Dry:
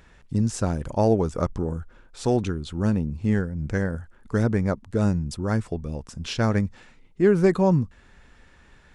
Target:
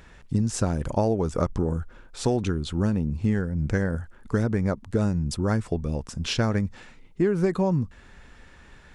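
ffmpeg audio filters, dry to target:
-af "acompressor=threshold=0.0794:ratio=12,volume=1.5"

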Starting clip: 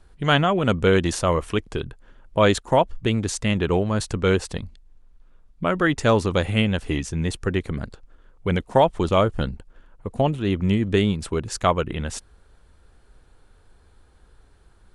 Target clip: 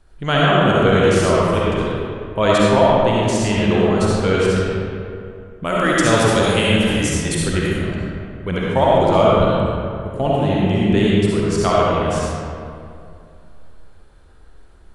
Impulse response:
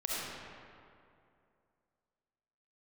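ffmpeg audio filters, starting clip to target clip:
-filter_complex "[0:a]asettb=1/sr,asplit=3[s0][s1][s2];[s0]atrim=end=5.644[s3];[s1]atrim=start=5.64:end=7.77,asetpts=PTS-STARTPTS,afade=t=in:d=0.004:c=qsin,afade=t=out:st=2.126:d=0.004:c=qsin,aemphasis=mode=production:type=75fm[s4];[s2]atrim=start=7.766[s5];[s3][s4]acrossfade=d=0.004:c1=hsin:c2=qsin[s6];[s6][s5]acrossfade=d=0.004:c1=qsin:c2=hsin[s7];[1:a]atrim=start_sample=2205[s8];[s7][s8]afir=irnorm=-1:irlink=0"

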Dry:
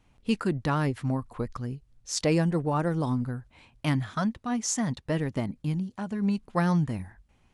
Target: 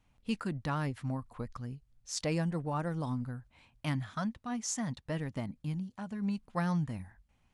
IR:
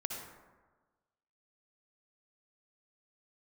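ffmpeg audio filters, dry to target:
-af "equalizer=f=380:w=2.2:g=-6,volume=0.473"

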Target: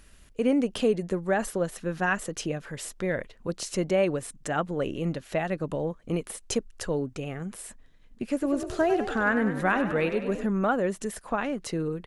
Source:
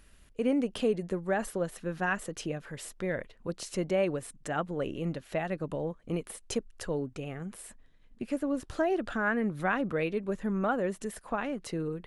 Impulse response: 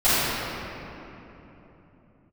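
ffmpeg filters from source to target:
-filter_complex "[0:a]equalizer=f=6400:t=o:w=0.94:g=3,asplit=3[s0][s1][s2];[s0]afade=t=out:st=8.41:d=0.02[s3];[s1]asplit=8[s4][s5][s6][s7][s8][s9][s10][s11];[s5]adelay=99,afreqshift=40,volume=0.316[s12];[s6]adelay=198,afreqshift=80,volume=0.191[s13];[s7]adelay=297,afreqshift=120,volume=0.114[s14];[s8]adelay=396,afreqshift=160,volume=0.0684[s15];[s9]adelay=495,afreqshift=200,volume=0.0412[s16];[s10]adelay=594,afreqshift=240,volume=0.0245[s17];[s11]adelay=693,afreqshift=280,volume=0.0148[s18];[s4][s12][s13][s14][s15][s16][s17][s18]amix=inputs=8:normalize=0,afade=t=in:st=8.41:d=0.02,afade=t=out:st=10.45:d=0.02[s19];[s2]afade=t=in:st=10.45:d=0.02[s20];[s3][s19][s20]amix=inputs=3:normalize=0,volume=1.58"

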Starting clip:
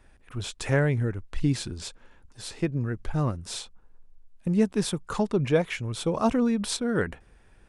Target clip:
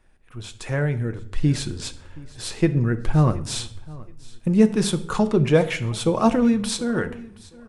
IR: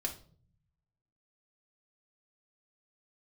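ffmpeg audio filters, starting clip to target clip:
-filter_complex "[0:a]dynaudnorm=f=260:g=9:m=3.76,aecho=1:1:724|1448:0.0841|0.0219,asplit=2[s0][s1];[1:a]atrim=start_sample=2205,asetrate=27783,aresample=44100[s2];[s1][s2]afir=irnorm=-1:irlink=0,volume=0.422[s3];[s0][s3]amix=inputs=2:normalize=0,volume=0.447"

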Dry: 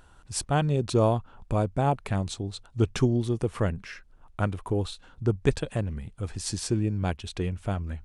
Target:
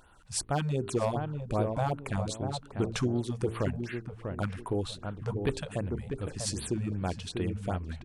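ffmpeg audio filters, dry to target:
-filter_complex "[0:a]lowshelf=f=140:g=-6,bandreject=f=56.62:t=h:w=4,bandreject=f=113.24:t=h:w=4,bandreject=f=169.86:t=h:w=4,bandreject=f=226.48:t=h:w=4,bandreject=f=283.1:t=h:w=4,bandreject=f=339.72:t=h:w=4,bandreject=f=396.34:t=h:w=4,bandreject=f=452.96:t=h:w=4,asplit=2[s0][s1];[s1]acompressor=threshold=0.0562:ratio=6,volume=1.26[s2];[s0][s2]amix=inputs=2:normalize=0,asoftclip=type=hard:threshold=0.224,asplit=2[s3][s4];[s4]adelay=644,lowpass=f=1200:p=1,volume=0.531,asplit=2[s5][s6];[s6]adelay=644,lowpass=f=1200:p=1,volume=0.28,asplit=2[s7][s8];[s8]adelay=644,lowpass=f=1200:p=1,volume=0.28,asplit=2[s9][s10];[s10]adelay=644,lowpass=f=1200:p=1,volume=0.28[s11];[s5][s7][s9][s11]amix=inputs=4:normalize=0[s12];[s3][s12]amix=inputs=2:normalize=0,afftfilt=real='re*(1-between(b*sr/1024,290*pow(6700/290,0.5+0.5*sin(2*PI*2.6*pts/sr))/1.41,290*pow(6700/290,0.5+0.5*sin(2*PI*2.6*pts/sr))*1.41))':imag='im*(1-between(b*sr/1024,290*pow(6700/290,0.5+0.5*sin(2*PI*2.6*pts/sr))/1.41,290*pow(6700/290,0.5+0.5*sin(2*PI*2.6*pts/sr))*1.41))':win_size=1024:overlap=0.75,volume=0.398"

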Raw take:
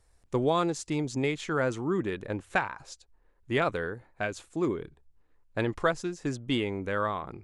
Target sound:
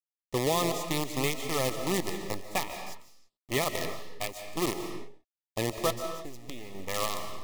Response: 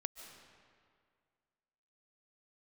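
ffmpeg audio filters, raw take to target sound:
-filter_complex "[0:a]asettb=1/sr,asplit=3[s0][s1][s2];[s0]atrim=end=5.904[s3];[s1]atrim=start=5.9:end=6.75,asetpts=PTS-STARTPTS,afade=t=in:d=0.004:c=qsin,afade=t=out:st=0.846:d=0.004:c=qsin,acompressor=threshold=0.0178:ratio=4[s4];[s2]atrim=start=6.746[s5];[s3][s4]acrossfade=d=0.004:c1=hsin:c2=qsin[s6];[s6][s5]acrossfade=d=0.004:c1=qsin:c2=hsin,acrusher=bits=5:dc=4:mix=0:aa=0.000001,asuperstop=centerf=1500:order=12:qfactor=3.8[s7];[1:a]atrim=start_sample=2205,afade=t=out:st=0.4:d=0.01,atrim=end_sample=18081[s8];[s7][s8]afir=irnorm=-1:irlink=0,adynamicequalizer=threshold=0.00501:dfrequency=3200:dqfactor=0.7:tfrequency=3200:tqfactor=0.7:attack=5:release=100:ratio=0.375:range=2.5:mode=boostabove:tftype=highshelf"

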